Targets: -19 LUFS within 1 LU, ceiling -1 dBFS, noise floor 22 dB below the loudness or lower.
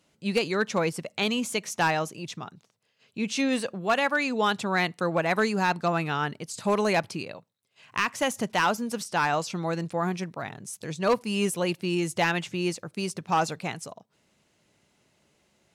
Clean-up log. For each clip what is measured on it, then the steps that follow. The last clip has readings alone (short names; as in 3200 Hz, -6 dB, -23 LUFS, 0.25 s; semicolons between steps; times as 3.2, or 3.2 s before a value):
clipped 0.3%; flat tops at -16.0 dBFS; loudness -27.5 LUFS; peak -16.0 dBFS; loudness target -19.0 LUFS
-> clip repair -16 dBFS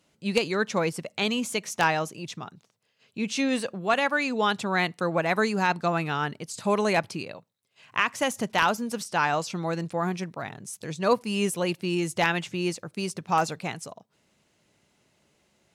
clipped 0.0%; loudness -27.0 LUFS; peak -7.0 dBFS; loudness target -19.0 LUFS
-> gain +8 dB; limiter -1 dBFS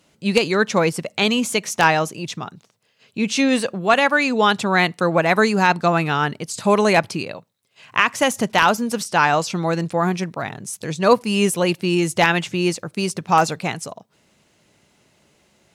loudness -19.0 LUFS; peak -1.0 dBFS; noise floor -63 dBFS